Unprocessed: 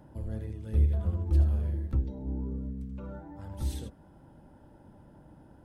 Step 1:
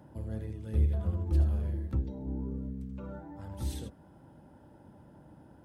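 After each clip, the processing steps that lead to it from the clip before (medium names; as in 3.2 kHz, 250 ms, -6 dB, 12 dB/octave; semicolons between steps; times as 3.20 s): high-pass 68 Hz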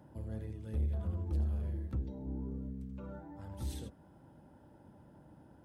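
saturation -24 dBFS, distortion -14 dB; trim -3.5 dB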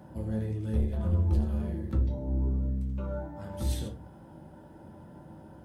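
simulated room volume 120 m³, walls furnished, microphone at 1.1 m; trim +7 dB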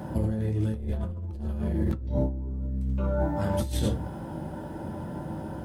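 compressor with a negative ratio -36 dBFS, ratio -1; trim +7.5 dB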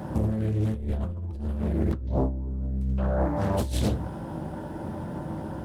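loudspeaker Doppler distortion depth 0.65 ms; trim +1.5 dB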